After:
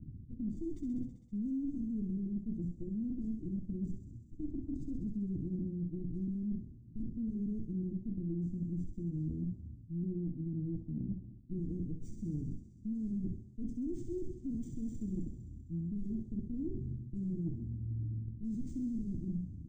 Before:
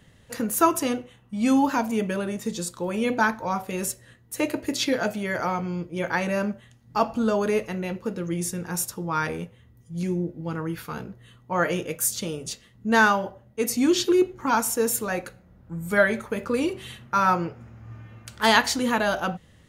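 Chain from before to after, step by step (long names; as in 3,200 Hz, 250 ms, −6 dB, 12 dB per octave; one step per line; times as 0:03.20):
lower of the sound and its delayed copy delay 0.8 ms
low-pass that shuts in the quiet parts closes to 1,100 Hz, open at −18.5 dBFS
Chebyshev band-stop filter 320–7,500 Hz, order 4
low-shelf EQ 270 Hz +5 dB
mains-hum notches 60/120/180 Hz
brickwall limiter −25.5 dBFS, peak gain reduction 12.5 dB
reversed playback
downward compressor 6 to 1, threshold −42 dBFS, peak gain reduction 13 dB
reversed playback
high-frequency loss of the air 200 metres
on a send: feedback echo with a high-pass in the loop 65 ms, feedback 81%, high-pass 530 Hz, level −6 dB
on the sum: linearly interpolated sample-rate reduction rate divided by 3×
level +6.5 dB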